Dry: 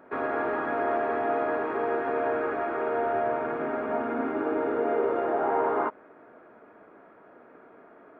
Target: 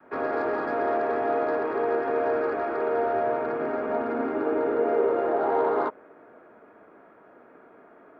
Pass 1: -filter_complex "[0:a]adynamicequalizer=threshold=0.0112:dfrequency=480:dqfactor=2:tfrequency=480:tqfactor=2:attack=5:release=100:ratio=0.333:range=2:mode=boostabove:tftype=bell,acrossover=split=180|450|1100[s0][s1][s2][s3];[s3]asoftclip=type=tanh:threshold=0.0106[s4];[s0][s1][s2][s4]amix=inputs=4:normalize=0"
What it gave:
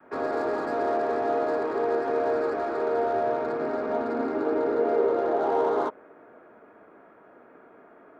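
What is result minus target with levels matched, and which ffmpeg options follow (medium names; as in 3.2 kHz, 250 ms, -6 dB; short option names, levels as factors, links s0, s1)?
saturation: distortion +12 dB
-filter_complex "[0:a]adynamicequalizer=threshold=0.0112:dfrequency=480:dqfactor=2:tfrequency=480:tqfactor=2:attack=5:release=100:ratio=0.333:range=2:mode=boostabove:tftype=bell,acrossover=split=180|450|1100[s0][s1][s2][s3];[s3]asoftclip=type=tanh:threshold=0.0335[s4];[s0][s1][s2][s4]amix=inputs=4:normalize=0"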